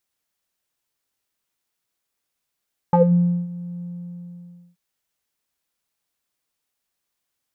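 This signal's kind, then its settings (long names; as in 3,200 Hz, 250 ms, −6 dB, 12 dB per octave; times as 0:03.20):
subtractive voice square F3 12 dB per octave, low-pass 240 Hz, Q 7.4, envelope 2 octaves, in 0.19 s, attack 2.1 ms, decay 0.54 s, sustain −20 dB, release 0.94 s, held 0.89 s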